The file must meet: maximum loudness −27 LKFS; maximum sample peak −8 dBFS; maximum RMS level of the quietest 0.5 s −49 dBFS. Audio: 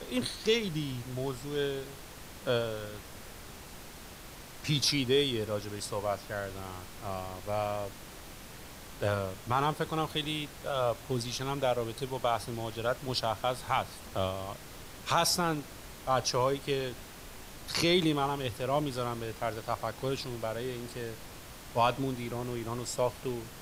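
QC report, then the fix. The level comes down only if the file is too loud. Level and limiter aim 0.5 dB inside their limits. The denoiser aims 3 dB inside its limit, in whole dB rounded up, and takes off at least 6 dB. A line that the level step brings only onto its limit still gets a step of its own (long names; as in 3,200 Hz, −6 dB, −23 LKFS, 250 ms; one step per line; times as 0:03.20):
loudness −32.5 LKFS: in spec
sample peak −13.5 dBFS: in spec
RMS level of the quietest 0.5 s −47 dBFS: out of spec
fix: broadband denoise 6 dB, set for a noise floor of −47 dBFS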